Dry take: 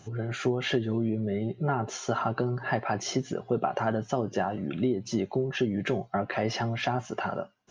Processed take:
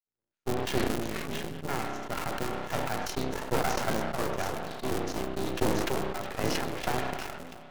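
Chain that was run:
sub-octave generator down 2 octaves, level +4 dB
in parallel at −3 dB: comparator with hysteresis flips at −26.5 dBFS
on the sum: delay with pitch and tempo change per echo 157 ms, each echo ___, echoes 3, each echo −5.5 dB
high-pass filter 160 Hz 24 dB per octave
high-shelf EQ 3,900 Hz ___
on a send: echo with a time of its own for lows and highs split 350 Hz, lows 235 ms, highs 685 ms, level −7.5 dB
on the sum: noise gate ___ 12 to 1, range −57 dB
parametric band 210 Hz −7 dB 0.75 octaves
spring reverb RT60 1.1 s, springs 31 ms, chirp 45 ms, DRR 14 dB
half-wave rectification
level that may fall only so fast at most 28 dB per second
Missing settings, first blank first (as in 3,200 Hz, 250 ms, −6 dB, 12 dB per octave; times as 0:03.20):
−7 semitones, +7.5 dB, −22 dBFS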